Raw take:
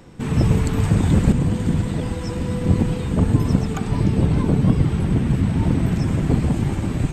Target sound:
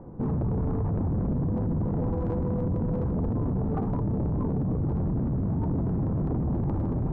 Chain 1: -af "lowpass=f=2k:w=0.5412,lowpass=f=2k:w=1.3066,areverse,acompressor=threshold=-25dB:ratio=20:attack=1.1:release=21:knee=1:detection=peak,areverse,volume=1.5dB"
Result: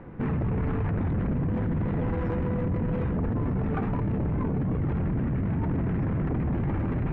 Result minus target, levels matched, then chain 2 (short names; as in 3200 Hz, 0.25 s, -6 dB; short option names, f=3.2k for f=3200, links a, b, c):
2000 Hz band +14.0 dB
-af "lowpass=f=990:w=0.5412,lowpass=f=990:w=1.3066,areverse,acompressor=threshold=-25dB:ratio=20:attack=1.1:release=21:knee=1:detection=peak,areverse,volume=1.5dB"